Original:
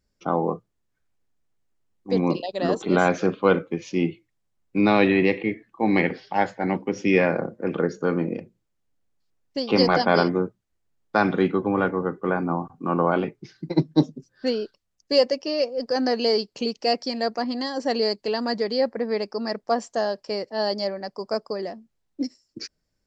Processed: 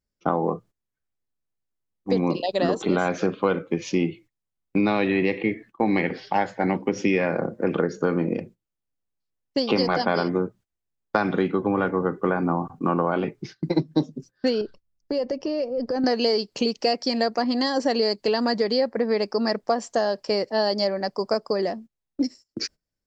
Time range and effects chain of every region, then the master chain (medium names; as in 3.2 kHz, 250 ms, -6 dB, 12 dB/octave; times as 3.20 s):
14.61–16.04 s: tilt EQ -3 dB/octave + compression 4:1, threshold -31 dBFS
whole clip: gate -46 dBFS, range -17 dB; compression, threshold -25 dBFS; trim +6.5 dB